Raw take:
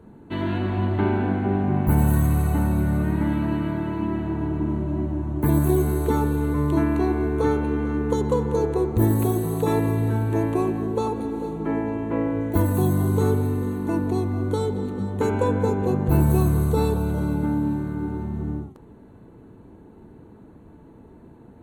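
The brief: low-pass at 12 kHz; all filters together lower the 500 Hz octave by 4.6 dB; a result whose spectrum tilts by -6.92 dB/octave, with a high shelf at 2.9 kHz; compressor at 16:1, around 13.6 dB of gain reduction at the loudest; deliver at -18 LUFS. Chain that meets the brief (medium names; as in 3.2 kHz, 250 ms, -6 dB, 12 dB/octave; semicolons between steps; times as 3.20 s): low-pass 12 kHz; peaking EQ 500 Hz -6.5 dB; treble shelf 2.9 kHz +8.5 dB; compression 16:1, threshold -28 dBFS; trim +15 dB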